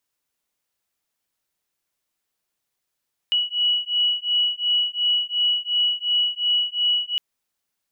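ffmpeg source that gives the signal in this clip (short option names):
-f lavfi -i "aevalsrc='0.0794*(sin(2*PI*2930*t)+sin(2*PI*2932.8*t))':d=3.86:s=44100"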